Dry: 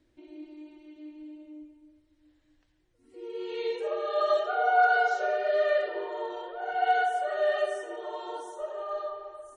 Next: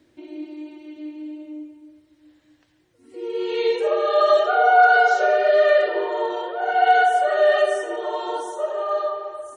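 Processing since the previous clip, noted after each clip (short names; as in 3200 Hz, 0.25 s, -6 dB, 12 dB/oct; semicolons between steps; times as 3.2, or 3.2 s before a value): HPF 110 Hz 12 dB/oct; in parallel at -2 dB: limiter -21 dBFS, peak gain reduction 9 dB; on the sum: gain +5.5 dB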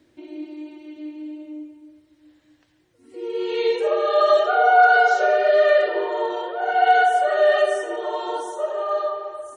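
nothing audible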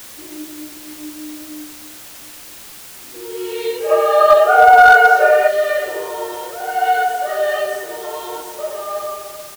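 doubler 16 ms -6.5 dB; spectral gain 3.9–5.47, 430–2900 Hz +8 dB; requantised 6-bit, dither triangular; gain -1 dB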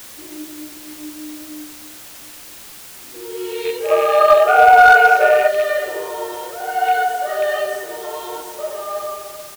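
rattling part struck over -32 dBFS, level -17 dBFS; gain -1 dB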